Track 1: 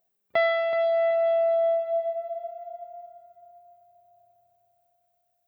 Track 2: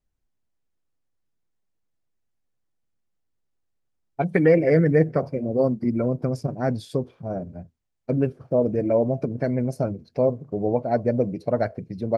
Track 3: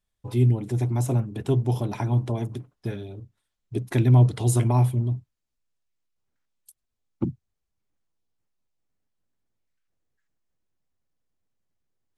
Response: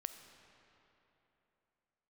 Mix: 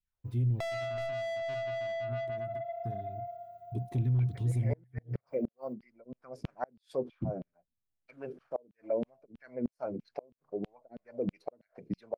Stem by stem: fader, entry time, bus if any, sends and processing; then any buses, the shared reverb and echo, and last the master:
+2.5 dB, 0.25 s, bus A, no send, no processing
−6.0 dB, 0.00 s, no bus, no send, brickwall limiter −15 dBFS, peak gain reduction 8.5 dB; auto-filter high-pass saw down 3.1 Hz 220–3,100 Hz; shaped tremolo triangle 0.62 Hz, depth 100%
−18.5 dB, 0.00 s, bus A, no send, leveller curve on the samples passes 1; notch on a step sequencer 2 Hz 700–2,100 Hz
bus A: 0.0 dB, soft clipping −28 dBFS, distortion −8 dB; downward compressor, threshold −36 dBFS, peak gain reduction 6.5 dB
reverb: not used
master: bass and treble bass +12 dB, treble −5 dB; gate with flip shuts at −21 dBFS, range −35 dB

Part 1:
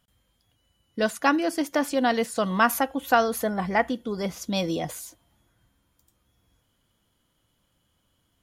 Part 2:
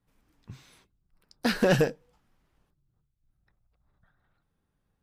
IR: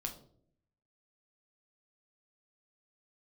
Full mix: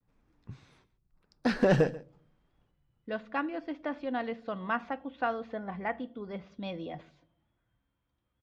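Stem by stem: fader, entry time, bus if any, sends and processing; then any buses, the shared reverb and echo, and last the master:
−13.0 dB, 2.10 s, send −9 dB, no echo send, low-pass filter 3,300 Hz 24 dB per octave
−1.5 dB, 0.00 s, send −16.5 dB, echo send −18 dB, pitch vibrato 0.76 Hz 51 cents; high-shelf EQ 2,200 Hz −8.5 dB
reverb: on, RT60 0.60 s, pre-delay 7 ms
echo: single-tap delay 137 ms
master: low-pass filter 6,700 Hz 12 dB per octave; notch filter 3,000 Hz, Q 22

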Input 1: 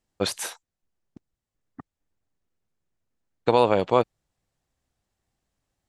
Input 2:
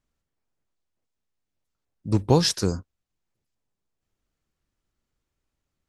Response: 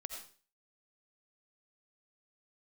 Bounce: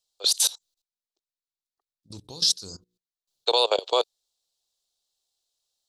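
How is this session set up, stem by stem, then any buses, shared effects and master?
+2.0 dB, 0.00 s, no send, Butterworth high-pass 400 Hz 48 dB per octave; automatic ducking −19 dB, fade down 1.75 s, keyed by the second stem
−6.0 dB, 0.00 s, no send, low-shelf EQ 390 Hz −5.5 dB; mains-hum notches 60/120/180/240/300/360/420/480 Hz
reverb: not used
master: high shelf with overshoot 2,800 Hz +12 dB, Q 3; output level in coarse steps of 20 dB

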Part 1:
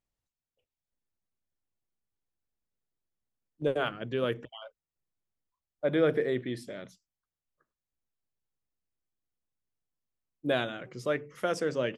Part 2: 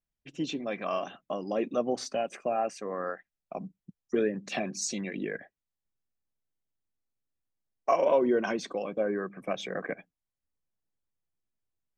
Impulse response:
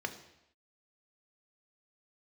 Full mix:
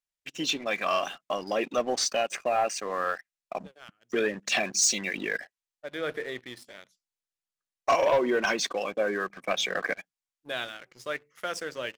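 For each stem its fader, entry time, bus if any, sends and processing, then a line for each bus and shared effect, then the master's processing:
−12.0 dB, 0.00 s, no send, automatic ducking −15 dB, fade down 1.10 s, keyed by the second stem
−3.0 dB, 0.00 s, no send, Chebyshev low-pass filter 8,600 Hz, order 2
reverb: not used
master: tilt shelving filter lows −8.5 dB, about 640 Hz; leveller curve on the samples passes 2

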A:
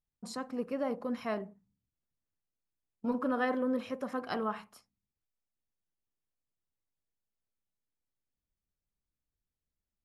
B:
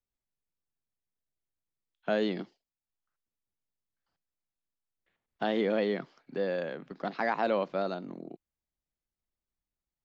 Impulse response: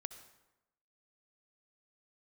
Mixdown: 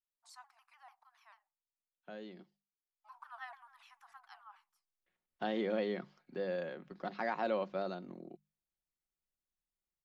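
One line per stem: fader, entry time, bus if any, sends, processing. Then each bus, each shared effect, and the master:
−12.5 dB, 0.00 s, no send, Butterworth high-pass 760 Hz 96 dB per octave; pitch modulation by a square or saw wave saw down 6.8 Hz, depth 160 cents; automatic ducking −18 dB, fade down 1.45 s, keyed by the second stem
0:02.94 −19.5 dB → 0:03.16 −7 dB, 0.00 s, no send, mains-hum notches 50/100/150/200 Hz; comb filter 5.5 ms, depth 35%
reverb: not used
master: no processing

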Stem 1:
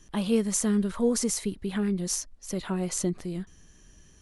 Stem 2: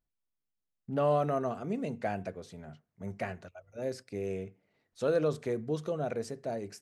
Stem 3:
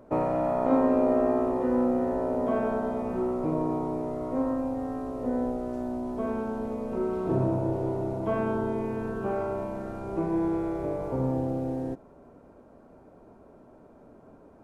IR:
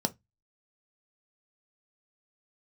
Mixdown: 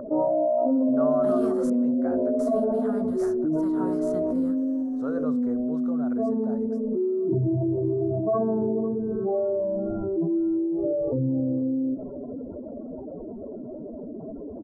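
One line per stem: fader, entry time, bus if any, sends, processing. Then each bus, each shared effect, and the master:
−10.0 dB, 1.10 s, muted 0:01.70–0:02.39, no send, no echo send, spectral envelope flattened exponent 0.6
−6.0 dB, 0.00 s, no send, no echo send, no processing
−0.5 dB, 0.00 s, no send, echo send −17.5 dB, expanding power law on the bin magnitudes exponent 3.2; tape wow and flutter 16 cents; envelope flattener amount 50%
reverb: not used
echo: repeating echo 501 ms, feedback 31%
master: high shelf with overshoot 1,800 Hz −11 dB, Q 3

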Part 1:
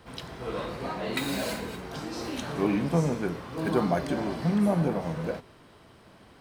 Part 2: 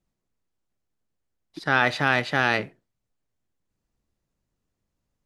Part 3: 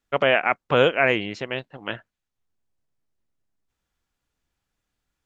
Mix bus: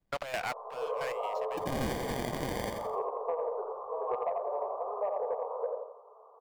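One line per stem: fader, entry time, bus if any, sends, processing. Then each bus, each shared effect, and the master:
+2.5 dB, 0.35 s, no bus, no send, echo send −4.5 dB, Chebyshev band-pass filter 430–1,200 Hz, order 5
+2.5 dB, 0.00 s, bus A, no send, echo send −3 dB, output level in coarse steps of 10 dB; decimation without filtering 33×
−16.5 dB, 0.00 s, bus A, no send, no echo send, high-pass filter 560 Hz 24 dB per octave; leveller curve on the samples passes 5; gate pattern ".x.xxx.." 134 BPM −12 dB; automatic ducking −15 dB, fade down 1.40 s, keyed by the second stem
bus A: 0.0 dB, downward compressor, threshold −30 dBFS, peak gain reduction 15.5 dB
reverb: not used
echo: repeating echo 85 ms, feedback 38%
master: notch filter 6,000 Hz, Q 28; soft clipping −15.5 dBFS, distortion −17 dB; downward compressor 4 to 1, threshold −30 dBFS, peak gain reduction 8.5 dB

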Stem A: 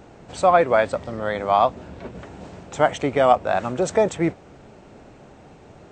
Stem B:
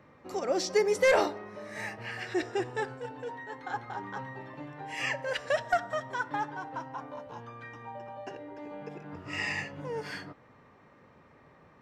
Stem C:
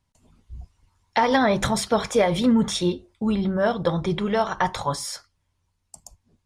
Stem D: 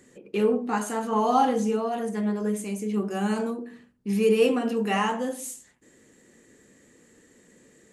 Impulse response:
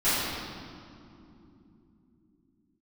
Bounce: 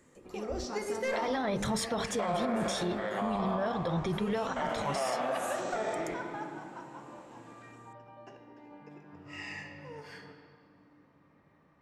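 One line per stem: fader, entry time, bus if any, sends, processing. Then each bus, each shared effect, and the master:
−9.5 dB, 1.80 s, send −15 dB, spectrum averaged block by block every 200 ms; meter weighting curve A
−10.5 dB, 0.00 s, send −19 dB, no processing
−5.0 dB, 0.00 s, no send, brickwall limiter −17.5 dBFS, peak gain reduction 9 dB
−8.5 dB, 0.00 s, no send, downward compressor, threshold −29 dBFS, peak gain reduction 13 dB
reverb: on, pre-delay 3 ms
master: brickwall limiter −23 dBFS, peak gain reduction 8.5 dB

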